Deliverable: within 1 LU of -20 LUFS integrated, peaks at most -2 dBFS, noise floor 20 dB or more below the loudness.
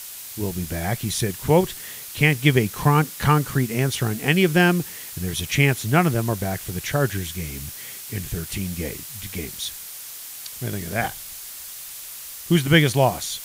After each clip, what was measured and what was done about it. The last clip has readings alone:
noise floor -37 dBFS; noise floor target -43 dBFS; loudness -22.5 LUFS; peak -3.0 dBFS; loudness target -20.0 LUFS
-> noise print and reduce 6 dB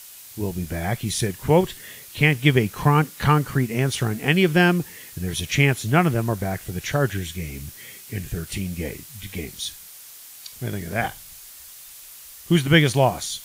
noise floor -43 dBFS; loudness -22.0 LUFS; peak -3.0 dBFS; loudness target -20.0 LUFS
-> gain +2 dB; limiter -2 dBFS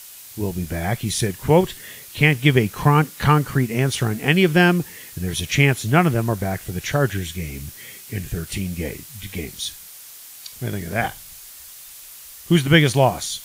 loudness -20.5 LUFS; peak -2.0 dBFS; noise floor -41 dBFS

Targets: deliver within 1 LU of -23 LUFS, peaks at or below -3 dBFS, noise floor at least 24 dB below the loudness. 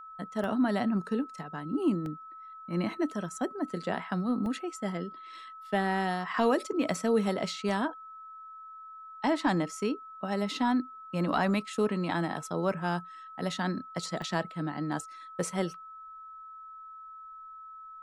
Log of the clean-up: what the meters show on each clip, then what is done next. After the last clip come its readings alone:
dropouts 6; longest dropout 1.3 ms; steady tone 1300 Hz; tone level -44 dBFS; loudness -31.5 LUFS; peak -15.0 dBFS; loudness target -23.0 LUFS
-> interpolate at 0.44/2.06/4.46/6.94/7.69/14.22, 1.3 ms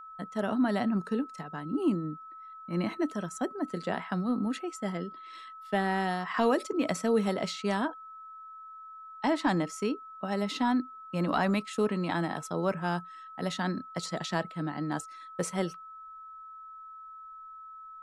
dropouts 0; steady tone 1300 Hz; tone level -44 dBFS
-> notch 1300 Hz, Q 30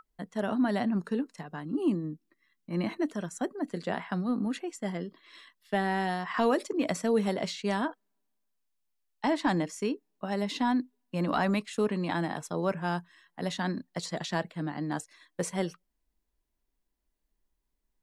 steady tone none; loudness -31.5 LUFS; peak -14.5 dBFS; loudness target -23.0 LUFS
-> gain +8.5 dB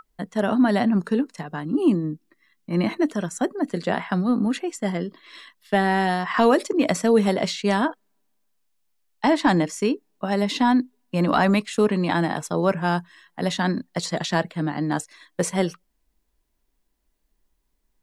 loudness -23.0 LUFS; peak -6.0 dBFS; noise floor -72 dBFS

